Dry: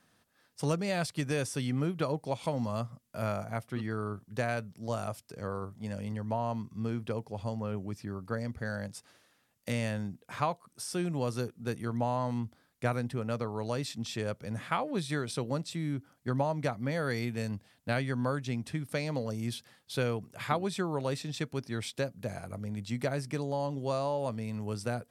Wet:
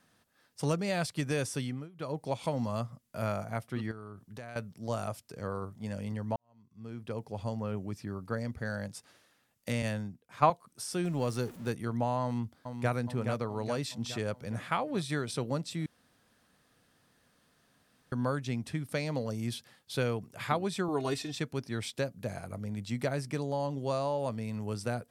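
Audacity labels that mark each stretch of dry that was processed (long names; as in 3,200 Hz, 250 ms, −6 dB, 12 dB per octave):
1.560000	2.240000	duck −22.5 dB, fades 0.33 s
3.910000	4.560000	downward compressor 3 to 1, threshold −44 dBFS
6.360000	7.280000	fade in quadratic
9.820000	10.500000	multiband upward and downward expander depth 100%
11.040000	11.720000	converter with a step at zero of −46 dBFS
12.230000	12.940000	delay throw 420 ms, feedback 60%, level −7 dB
15.860000	18.120000	fill with room tone
20.880000	21.340000	comb filter 2.8 ms, depth 92%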